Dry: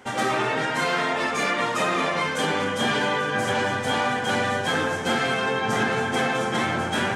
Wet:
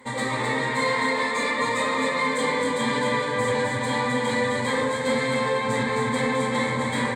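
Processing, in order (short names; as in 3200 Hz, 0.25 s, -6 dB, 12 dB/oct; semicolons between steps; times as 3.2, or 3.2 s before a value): soft clip -16 dBFS, distortion -20 dB; ripple EQ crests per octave 1, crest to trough 16 dB; echo 0.261 s -4.5 dB; gain -3.5 dB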